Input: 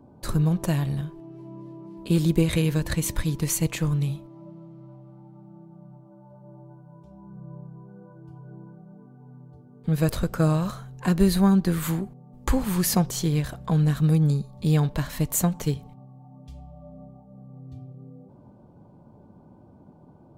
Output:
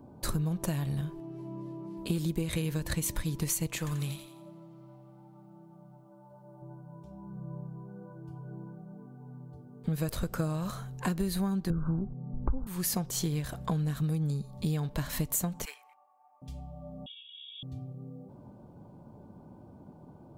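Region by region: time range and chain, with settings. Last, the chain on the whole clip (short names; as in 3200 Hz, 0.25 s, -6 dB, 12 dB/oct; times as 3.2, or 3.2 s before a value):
3.78–6.62 low shelf 450 Hz -8.5 dB + thin delay 86 ms, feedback 42%, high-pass 1800 Hz, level -3.5 dB
11.7–12.67 brick-wall FIR low-pass 1600 Hz + tilt -3.5 dB/oct
15.65–16.42 HPF 870 Hz 24 dB/oct + resonant high shelf 2900 Hz -6 dB, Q 3
17.06–17.63 inverted band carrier 3500 Hz + ensemble effect
whole clip: high shelf 6600 Hz +5.5 dB; compressor 6:1, threshold -28 dBFS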